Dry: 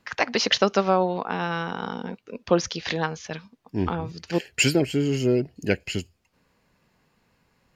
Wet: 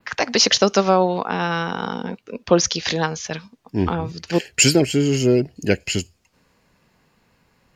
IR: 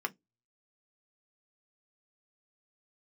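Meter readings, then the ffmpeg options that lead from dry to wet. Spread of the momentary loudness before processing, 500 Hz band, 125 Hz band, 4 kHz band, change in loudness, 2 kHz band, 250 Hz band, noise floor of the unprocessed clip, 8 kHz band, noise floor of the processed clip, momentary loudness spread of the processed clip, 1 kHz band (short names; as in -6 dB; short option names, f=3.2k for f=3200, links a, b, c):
14 LU, +5.0 dB, +5.0 dB, +6.5 dB, +5.5 dB, +3.5 dB, +5.0 dB, -68 dBFS, +11.5 dB, -63 dBFS, 15 LU, +4.0 dB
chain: -filter_complex "[0:a]adynamicequalizer=threshold=0.00631:dfrequency=6600:dqfactor=1:tfrequency=6600:tqfactor=1:attack=5:release=100:ratio=0.375:range=4:mode=boostabove:tftype=bell,acrossover=split=710|3900[a][b][c];[b]alimiter=limit=-16.5dB:level=0:latency=1:release=103[d];[a][d][c]amix=inputs=3:normalize=0,volume=5dB"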